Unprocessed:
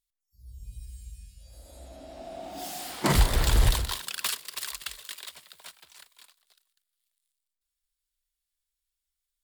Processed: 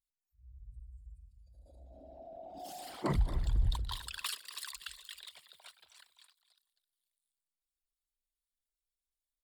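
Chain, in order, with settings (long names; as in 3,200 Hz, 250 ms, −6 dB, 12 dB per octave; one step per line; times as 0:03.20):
spectral envelope exaggerated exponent 2
single-tap delay 262 ms −15 dB
level −8.5 dB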